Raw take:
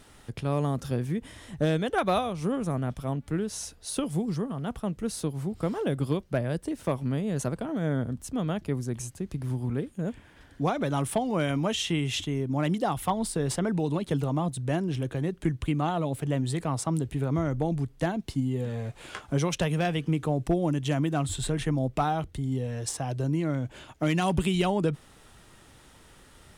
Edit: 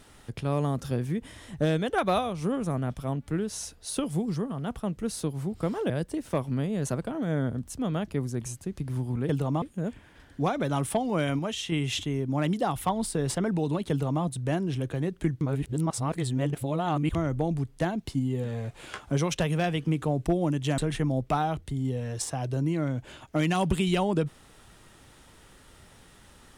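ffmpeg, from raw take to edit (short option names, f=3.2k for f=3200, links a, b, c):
-filter_complex "[0:a]asplit=9[a][b][c][d][e][f][g][h][i];[a]atrim=end=5.902[j];[b]atrim=start=6.438:end=9.832[k];[c]atrim=start=14.108:end=14.442[l];[d]atrim=start=9.828:end=11.602[m];[e]atrim=start=11.598:end=11.932,asetpts=PTS-STARTPTS,volume=-4dB[n];[f]atrim=start=11.928:end=15.622[o];[g]atrim=start=15.618:end=17.362,asetpts=PTS-STARTPTS,areverse[p];[h]atrim=start=17.358:end=20.992[q];[i]atrim=start=21.448[r];[j][k]acrossfade=d=0.004:c1=hsin:c2=hsin[s];[s][l]acrossfade=d=0.004:c1=hsin:c2=hsin[t];[t][m]acrossfade=d=0.004:c1=hsin:c2=hsin[u];[u][n]acrossfade=d=0.004:c1=hsin:c2=hsin[v];[v][o]acrossfade=d=0.004:c1=hsin:c2=hsin[w];[w][p]acrossfade=d=0.004:c1=hsin:c2=hsin[x];[x][q]acrossfade=d=0.004:c1=hsin:c2=hsin[y];[y][r]acrossfade=d=0.004:c1=hsin:c2=hsin"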